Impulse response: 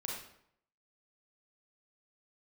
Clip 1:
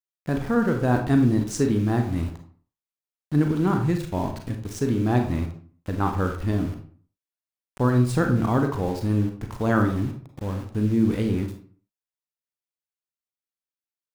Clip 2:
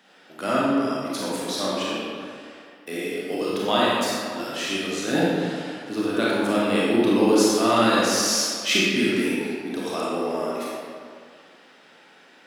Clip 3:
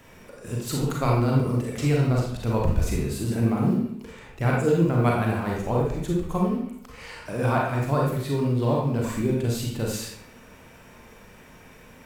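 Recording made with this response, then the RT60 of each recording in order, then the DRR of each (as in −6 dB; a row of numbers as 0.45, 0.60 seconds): 3; 0.45, 2.1, 0.70 seconds; 4.5, −7.0, −2.5 decibels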